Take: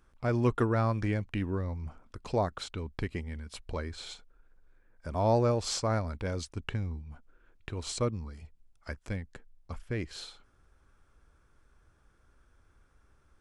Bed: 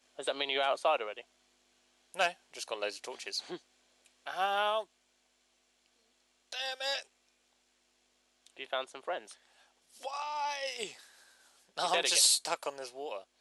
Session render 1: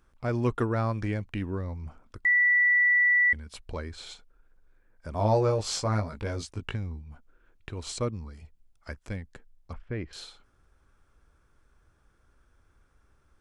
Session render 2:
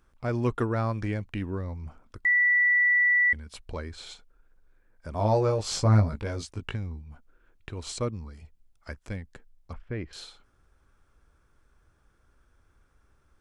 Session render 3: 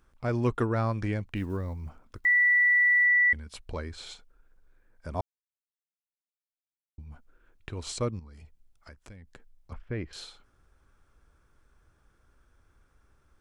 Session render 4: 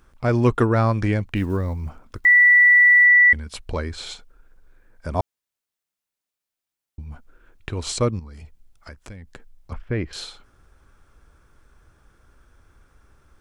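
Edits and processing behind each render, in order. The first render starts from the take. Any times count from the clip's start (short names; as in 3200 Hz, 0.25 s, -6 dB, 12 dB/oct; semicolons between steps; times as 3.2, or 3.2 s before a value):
2.25–3.33 bleep 1960 Hz -18.5 dBFS; 5.17–6.76 doubler 19 ms -3.5 dB; 9.73–10.13 LPF 2400 Hz
5.71–6.16 low shelf 290 Hz +10.5 dB
1.36–3.06 block floating point 7-bit; 5.21–6.98 mute; 8.19–9.72 compressor 5:1, threshold -45 dBFS
gain +9 dB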